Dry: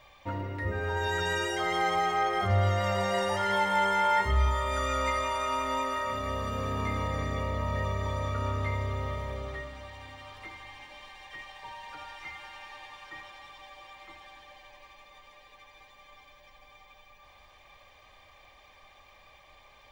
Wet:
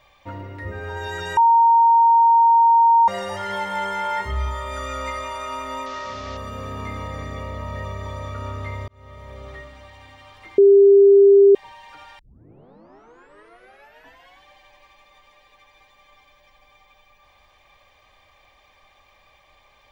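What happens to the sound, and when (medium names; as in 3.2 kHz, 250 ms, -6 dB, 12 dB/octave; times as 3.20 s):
1.37–3.08 s: bleep 925 Hz -10.5 dBFS
5.86–6.37 s: one-bit delta coder 32 kbps, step -32.5 dBFS
8.88–9.51 s: fade in
10.58–11.55 s: bleep 398 Hz -7.5 dBFS
12.19 s: tape start 2.26 s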